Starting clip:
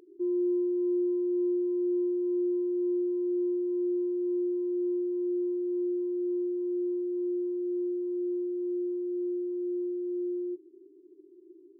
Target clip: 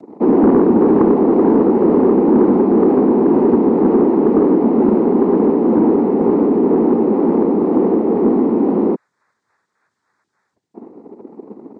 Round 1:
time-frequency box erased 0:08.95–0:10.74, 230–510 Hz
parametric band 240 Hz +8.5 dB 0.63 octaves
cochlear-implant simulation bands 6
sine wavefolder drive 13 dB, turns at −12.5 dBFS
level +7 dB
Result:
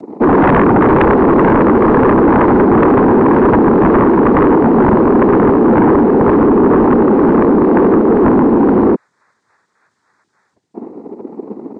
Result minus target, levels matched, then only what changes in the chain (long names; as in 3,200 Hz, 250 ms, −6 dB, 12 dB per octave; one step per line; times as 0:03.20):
sine wavefolder: distortion +16 dB
change: sine wavefolder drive 5 dB, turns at −12.5 dBFS